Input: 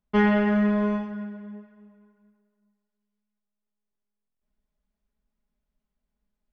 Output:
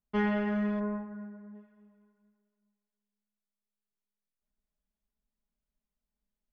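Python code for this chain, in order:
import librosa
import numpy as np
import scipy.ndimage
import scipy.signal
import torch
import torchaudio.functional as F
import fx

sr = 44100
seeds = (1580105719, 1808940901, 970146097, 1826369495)

y = fx.lowpass(x, sr, hz=1800.0, slope=24, at=(0.79, 1.54), fade=0.02)
y = y * 10.0 ** (-8.5 / 20.0)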